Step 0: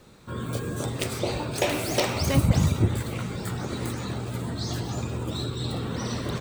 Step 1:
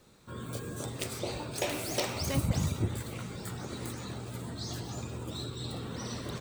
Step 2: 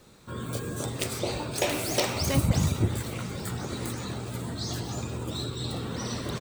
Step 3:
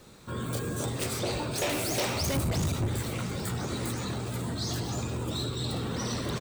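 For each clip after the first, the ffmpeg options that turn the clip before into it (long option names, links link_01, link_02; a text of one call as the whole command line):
ffmpeg -i in.wav -af "bass=frequency=250:gain=-1,treble=frequency=4000:gain=4,volume=-8dB" out.wav
ffmpeg -i in.wav -af "aecho=1:1:1053:0.0794,volume=5.5dB" out.wav
ffmpeg -i in.wav -af "asoftclip=type=tanh:threshold=-27dB,volume=2.5dB" out.wav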